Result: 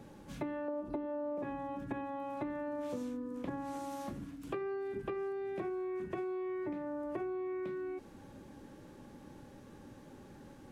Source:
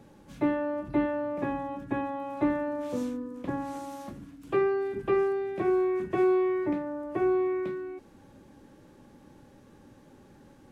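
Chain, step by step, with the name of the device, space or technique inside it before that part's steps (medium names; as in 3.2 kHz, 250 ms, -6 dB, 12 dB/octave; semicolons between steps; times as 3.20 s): 0.68–1.43 s: graphic EQ 125/250/500/1000/2000 Hz -9/+6/+7/+4/-7 dB; serial compression, leveller first (compression 2.5:1, threshold -27 dBFS, peak gain reduction 8.5 dB; compression 5:1, threshold -38 dBFS, peak gain reduction 14 dB); trim +1 dB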